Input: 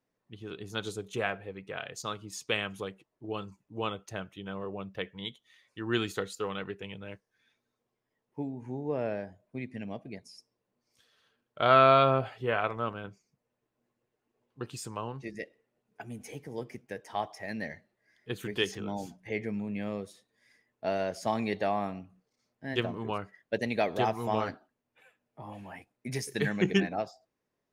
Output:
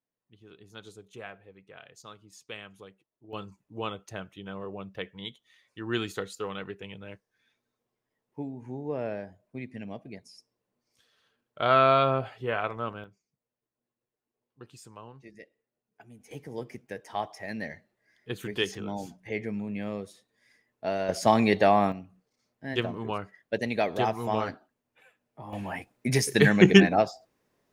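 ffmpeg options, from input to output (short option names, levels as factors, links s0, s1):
-af "asetnsamples=n=441:p=0,asendcmd='3.33 volume volume -0.5dB;13.04 volume volume -9.5dB;16.31 volume volume 1dB;21.09 volume volume 9dB;21.92 volume volume 1.5dB;25.53 volume volume 10dB',volume=0.282"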